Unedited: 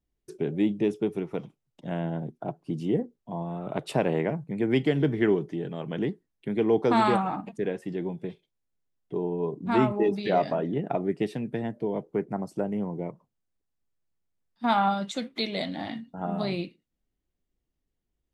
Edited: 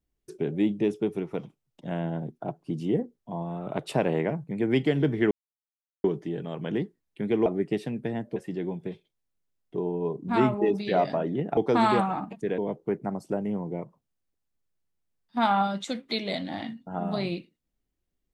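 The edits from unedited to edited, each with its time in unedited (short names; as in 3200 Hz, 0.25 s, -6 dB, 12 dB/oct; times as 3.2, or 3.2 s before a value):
5.31 insert silence 0.73 s
6.73–7.74 swap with 10.95–11.85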